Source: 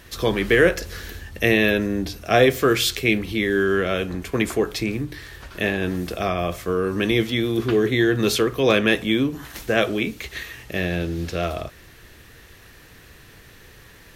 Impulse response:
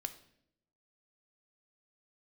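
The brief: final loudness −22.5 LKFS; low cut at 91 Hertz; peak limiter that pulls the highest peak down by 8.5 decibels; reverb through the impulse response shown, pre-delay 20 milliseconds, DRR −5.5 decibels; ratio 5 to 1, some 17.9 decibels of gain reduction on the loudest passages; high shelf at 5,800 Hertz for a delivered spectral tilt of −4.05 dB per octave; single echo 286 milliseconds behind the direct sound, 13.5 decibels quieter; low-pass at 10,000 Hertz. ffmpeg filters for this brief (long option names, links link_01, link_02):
-filter_complex "[0:a]highpass=91,lowpass=10000,highshelf=frequency=5800:gain=8,acompressor=threshold=-32dB:ratio=5,alimiter=level_in=0.5dB:limit=-24dB:level=0:latency=1,volume=-0.5dB,aecho=1:1:286:0.211,asplit=2[link_01][link_02];[1:a]atrim=start_sample=2205,adelay=20[link_03];[link_02][link_03]afir=irnorm=-1:irlink=0,volume=7dB[link_04];[link_01][link_04]amix=inputs=2:normalize=0,volume=7dB"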